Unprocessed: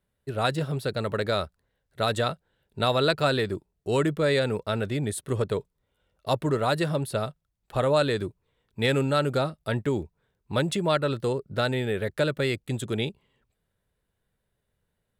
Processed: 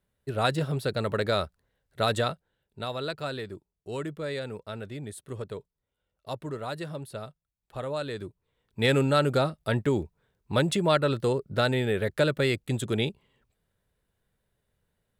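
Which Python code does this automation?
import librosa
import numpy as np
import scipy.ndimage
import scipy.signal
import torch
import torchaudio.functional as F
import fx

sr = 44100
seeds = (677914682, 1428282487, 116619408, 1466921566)

y = fx.gain(x, sr, db=fx.line((2.16, 0.0), (2.86, -10.0), (8.02, -10.0), (8.9, 1.0)))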